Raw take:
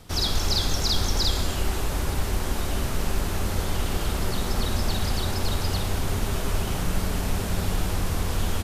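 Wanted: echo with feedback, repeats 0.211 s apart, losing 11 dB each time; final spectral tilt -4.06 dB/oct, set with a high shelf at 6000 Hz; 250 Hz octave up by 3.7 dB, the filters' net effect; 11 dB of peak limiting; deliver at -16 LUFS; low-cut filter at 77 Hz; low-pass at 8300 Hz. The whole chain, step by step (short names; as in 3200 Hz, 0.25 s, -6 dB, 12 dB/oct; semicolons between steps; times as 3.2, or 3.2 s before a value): HPF 77 Hz; LPF 8300 Hz; bell 250 Hz +5 dB; high shelf 6000 Hz +6 dB; limiter -22 dBFS; feedback echo 0.211 s, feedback 28%, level -11 dB; gain +14.5 dB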